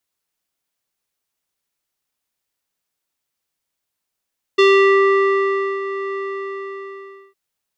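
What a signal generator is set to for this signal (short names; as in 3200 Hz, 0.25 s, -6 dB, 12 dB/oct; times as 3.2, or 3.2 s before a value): synth note square G4 12 dB/oct, low-pass 1800 Hz, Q 2, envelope 1 oct, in 0.42 s, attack 11 ms, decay 1.21 s, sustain -14 dB, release 1.19 s, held 1.57 s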